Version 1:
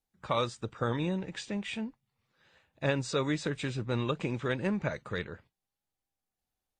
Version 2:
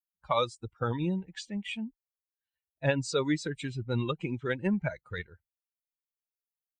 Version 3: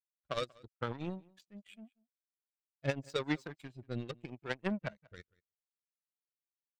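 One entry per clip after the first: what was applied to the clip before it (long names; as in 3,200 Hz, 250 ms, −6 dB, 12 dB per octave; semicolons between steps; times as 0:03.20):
spectral dynamics exaggerated over time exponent 2; level +5 dB
power curve on the samples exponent 2; rotating-speaker cabinet horn 0.8 Hz; slap from a distant wall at 32 metres, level −25 dB; level +2.5 dB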